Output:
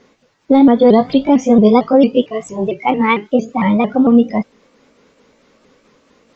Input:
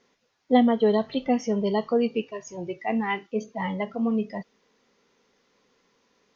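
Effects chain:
pitch shifter swept by a sawtooth +3 semitones, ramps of 226 ms
high-shelf EQ 5,200 Hz −7 dB
in parallel at −10.5 dB: gain into a clipping stage and back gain 16 dB
on the sum: low-shelf EQ 390 Hz +6.5 dB
boost into a limiter +12 dB
level −1 dB

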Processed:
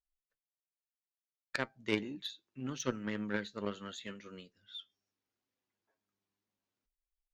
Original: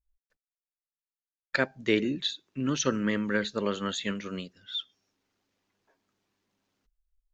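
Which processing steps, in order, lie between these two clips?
flanger 0.72 Hz, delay 7.7 ms, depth 2.6 ms, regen +55%
harmonic generator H 3 −15 dB, 5 −44 dB, 7 −34 dB, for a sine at −13 dBFS

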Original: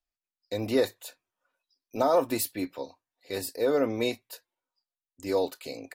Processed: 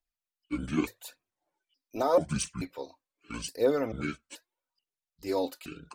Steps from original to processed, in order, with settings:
pitch shifter gated in a rhythm −9 semitones, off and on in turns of 435 ms
phase shifter 0.82 Hz, delay 4 ms, feedback 46%
level −3 dB

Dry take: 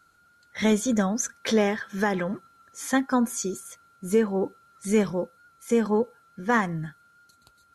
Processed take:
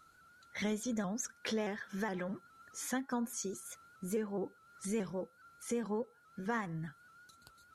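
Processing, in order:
downward compressor 2 to 1, threshold −41 dBFS, peak gain reduction 13.5 dB
pitch modulation by a square or saw wave saw up 4.8 Hz, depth 100 cents
level −2 dB

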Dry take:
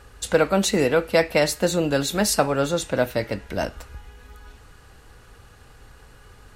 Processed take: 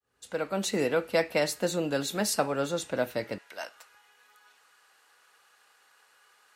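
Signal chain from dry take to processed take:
fade in at the beginning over 0.79 s
high-pass filter 150 Hz 12 dB per octave, from 0:03.38 910 Hz
level −7 dB

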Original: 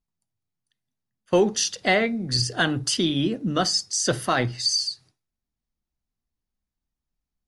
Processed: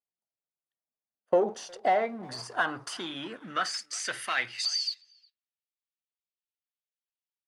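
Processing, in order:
parametric band 9,700 Hz +14 dB 0.88 octaves, from 0:04.65 −2.5 dB
leveller curve on the samples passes 2
downward compressor 2.5 to 1, threshold −17 dBFS, peak gain reduction 5 dB
band-pass filter sweep 620 Hz → 3,000 Hz, 0:01.38–0:05.03
far-end echo of a speakerphone 360 ms, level −24 dB

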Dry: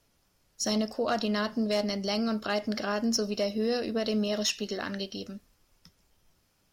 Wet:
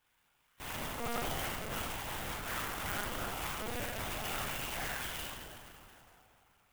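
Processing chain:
lower of the sound and its delayed copy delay 4.2 ms
high-pass filter 1,200 Hz 12 dB per octave
in parallel at −2 dB: brickwall limiter −28 dBFS, peak gain reduction 9.5 dB
on the sum: wrap-around overflow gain 29 dB
flutter between parallel walls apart 5.9 metres, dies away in 1.1 s
convolution reverb RT60 3.4 s, pre-delay 37 ms, DRR 4 dB
linear-prediction vocoder at 8 kHz pitch kept
converter with an unsteady clock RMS 0.052 ms
level −3 dB

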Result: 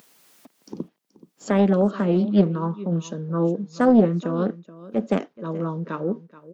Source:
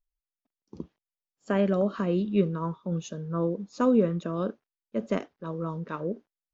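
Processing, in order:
high-pass filter 160 Hz 24 dB per octave
low-shelf EQ 440 Hz +5.5 dB
upward compression, threshold −32 dBFS
single-tap delay 428 ms −18 dB
highs frequency-modulated by the lows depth 0.36 ms
level +3 dB

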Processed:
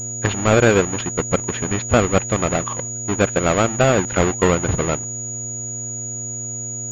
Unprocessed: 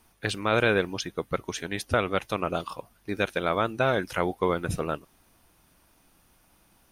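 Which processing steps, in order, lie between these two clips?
each half-wave held at its own peak
hum with harmonics 120 Hz, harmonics 6, −39 dBFS −8 dB per octave
switching amplifier with a slow clock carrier 6,800 Hz
level +4.5 dB

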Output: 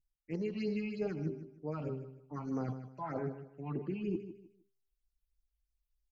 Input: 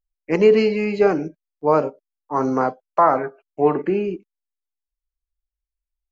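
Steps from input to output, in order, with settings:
hum removal 132.9 Hz, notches 3
pitch vibrato 1.3 Hz 32 cents
octave-band graphic EQ 125/500/1,000 Hz +8/−4/−10 dB
reversed playback
downward compressor 5 to 1, threshold −36 dBFS, peak gain reduction 21 dB
reversed playback
all-pass phaser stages 6, 3.2 Hz, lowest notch 420–3,100 Hz
healed spectral selection 0:02.87–0:03.07, 1,100–2,400 Hz both
on a send: repeating echo 154 ms, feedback 27%, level −12 dB
on the sum: level +1 dB

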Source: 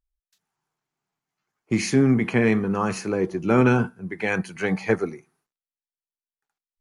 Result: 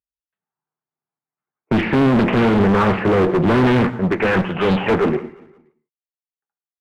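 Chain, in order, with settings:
0:04.44–0:04.87: samples sorted by size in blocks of 16 samples
high-pass filter 67 Hz 12 dB per octave
low-shelf EQ 320 Hz −5.5 dB
in parallel at +1 dB: brickwall limiter −18.5 dBFS, peak gain reduction 9.5 dB
on the sum: leveller curve on the samples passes 5
Gaussian smoothing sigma 4.5 samples
asymmetric clip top −12 dBFS
repeating echo 175 ms, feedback 42%, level −21.5 dB
on a send at −14 dB: convolution reverb, pre-delay 3 ms
on the sum: highs frequency-modulated by the lows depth 0.65 ms
level −2.5 dB

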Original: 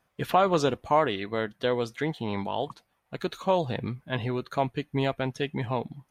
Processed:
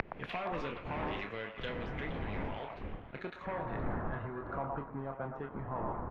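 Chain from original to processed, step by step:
wind on the microphone 420 Hz −28 dBFS
high-shelf EQ 4,800 Hz +7 dB
double-tracking delay 29 ms −8 dB
leveller curve on the samples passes 3
gate with flip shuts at −23 dBFS, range −36 dB
echo ahead of the sound 55 ms −17 dB
downward compressor 16 to 1, threshold −55 dBFS, peak gain reduction 20 dB
low-shelf EQ 89 Hz +7.5 dB
echo through a band-pass that steps 118 ms, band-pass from 840 Hz, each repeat 0.7 octaves, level −0.5 dB
low-pass filter sweep 2,400 Hz → 1,200 Hz, 0:02.87–0:04.76
multiband upward and downward expander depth 70%
level +17.5 dB

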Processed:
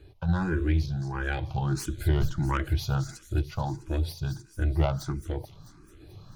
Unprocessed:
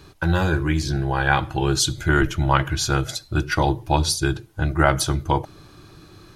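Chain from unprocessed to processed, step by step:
phase distortion by the signal itself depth 0.1 ms
sample-and-hold tremolo
in parallel at 0 dB: downward compressor, threshold −31 dBFS, peak gain reduction 16 dB
on the sum: spectral tilt −2 dB per octave
delay with a high-pass on its return 219 ms, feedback 69%, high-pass 4,900 Hz, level −7.5 dB
frequency shifter mixed with the dry sound +1.5 Hz
level −8 dB

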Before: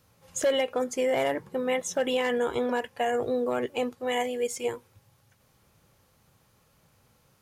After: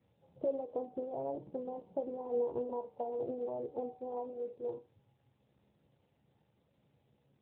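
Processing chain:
adaptive Wiener filter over 25 samples
elliptic low-pass filter 940 Hz, stop band 40 dB
hum removal 151 Hz, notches 13
downward compressor 2.5 to 1, threshold −30 dBFS, peak gain reduction 6.5 dB
log-companded quantiser 8 bits
tuned comb filter 69 Hz, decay 0.19 s, harmonics all, mix 80%
level +1 dB
AMR narrowband 12.2 kbit/s 8,000 Hz

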